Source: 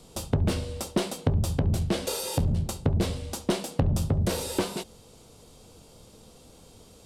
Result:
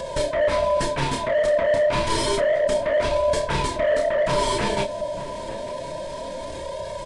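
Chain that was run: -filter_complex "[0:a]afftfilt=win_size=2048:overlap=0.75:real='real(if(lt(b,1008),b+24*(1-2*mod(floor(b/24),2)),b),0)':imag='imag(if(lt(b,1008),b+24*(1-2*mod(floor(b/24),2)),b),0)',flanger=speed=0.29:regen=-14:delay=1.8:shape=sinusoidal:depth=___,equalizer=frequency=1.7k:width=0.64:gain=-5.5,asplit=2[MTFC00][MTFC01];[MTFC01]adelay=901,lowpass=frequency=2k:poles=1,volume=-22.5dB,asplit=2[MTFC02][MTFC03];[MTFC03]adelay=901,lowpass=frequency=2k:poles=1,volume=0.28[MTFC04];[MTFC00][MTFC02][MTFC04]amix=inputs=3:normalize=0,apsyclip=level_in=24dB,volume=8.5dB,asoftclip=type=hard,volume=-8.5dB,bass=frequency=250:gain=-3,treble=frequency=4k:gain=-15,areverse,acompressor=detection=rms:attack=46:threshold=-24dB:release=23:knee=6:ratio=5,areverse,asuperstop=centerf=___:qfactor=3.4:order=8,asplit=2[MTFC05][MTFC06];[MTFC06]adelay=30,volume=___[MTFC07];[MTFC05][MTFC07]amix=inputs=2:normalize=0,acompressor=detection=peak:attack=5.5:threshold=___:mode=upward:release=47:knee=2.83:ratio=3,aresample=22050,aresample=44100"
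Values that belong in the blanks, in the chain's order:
8.5, 780, -6.5dB, -28dB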